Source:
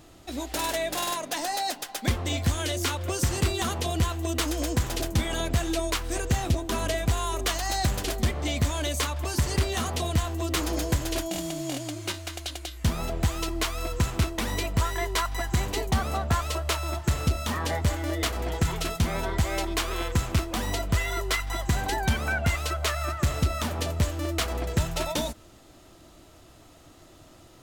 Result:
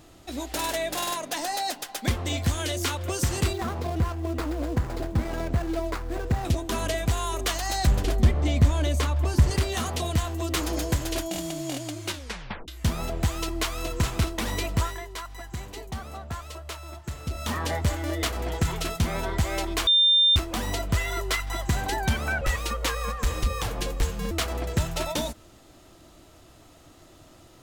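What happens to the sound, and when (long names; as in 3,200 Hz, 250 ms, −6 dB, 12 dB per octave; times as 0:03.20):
0:03.53–0:06.45: running median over 15 samples
0:07.87–0:09.51: spectral tilt −2 dB per octave
0:12.12: tape stop 0.56 s
0:13.29–0:13.83: delay throw 420 ms, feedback 50%, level −8 dB
0:14.79–0:17.49: duck −10 dB, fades 0.24 s
0:19.87–0:20.36: beep over 3,600 Hz −15.5 dBFS
0:22.41–0:24.31: frequency shifter −130 Hz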